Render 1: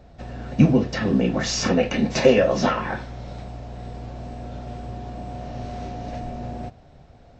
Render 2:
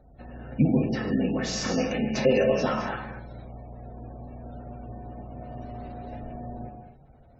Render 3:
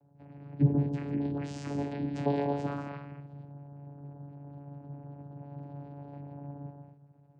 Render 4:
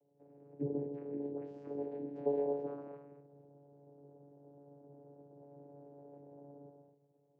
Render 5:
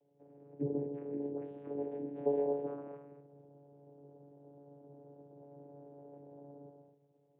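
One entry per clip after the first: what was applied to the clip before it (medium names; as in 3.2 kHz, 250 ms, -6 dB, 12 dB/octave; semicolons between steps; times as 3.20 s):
gated-style reverb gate 280 ms flat, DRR 2 dB; spectral gate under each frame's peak -30 dB strong; trim -7.5 dB
vocoder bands 8, saw 142 Hz; trim -5 dB
band-pass filter 450 Hz, Q 3.7; trim +1.5 dB
resampled via 8 kHz; trim +1.5 dB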